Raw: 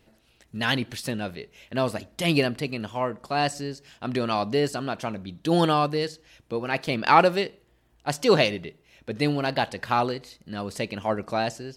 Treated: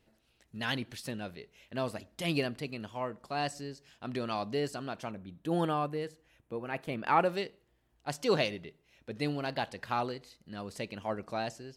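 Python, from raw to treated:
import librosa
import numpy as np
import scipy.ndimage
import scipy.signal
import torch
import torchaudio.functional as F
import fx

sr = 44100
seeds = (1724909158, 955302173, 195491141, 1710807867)

y = fx.peak_eq(x, sr, hz=4800.0, db=-12.5, octaves=1.1, at=(5.11, 7.29))
y = F.gain(torch.from_numpy(y), -9.0).numpy()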